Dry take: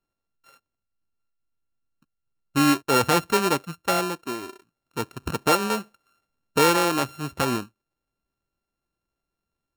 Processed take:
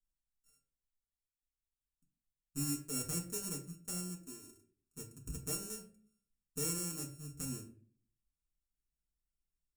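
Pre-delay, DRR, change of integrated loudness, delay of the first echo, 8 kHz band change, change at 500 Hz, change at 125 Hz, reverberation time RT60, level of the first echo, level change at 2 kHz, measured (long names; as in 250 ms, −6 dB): 4 ms, −1.0 dB, −16.5 dB, no echo audible, −7.0 dB, −24.0 dB, −12.0 dB, 0.50 s, no echo audible, −28.5 dB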